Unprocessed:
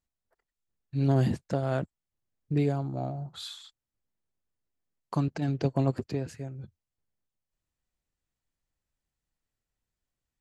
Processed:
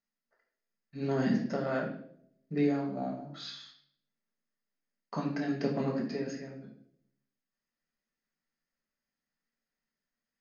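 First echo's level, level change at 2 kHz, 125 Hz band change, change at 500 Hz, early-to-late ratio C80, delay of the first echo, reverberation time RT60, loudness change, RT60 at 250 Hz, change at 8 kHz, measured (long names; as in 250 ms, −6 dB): no echo audible, +3.5 dB, −10.5 dB, −1.0 dB, 9.5 dB, no echo audible, 0.65 s, −3.5 dB, 0.85 s, can't be measured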